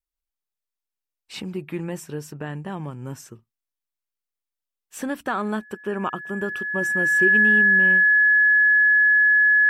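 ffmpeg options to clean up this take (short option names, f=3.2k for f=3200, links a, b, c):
-af "bandreject=f=1.7k:w=30"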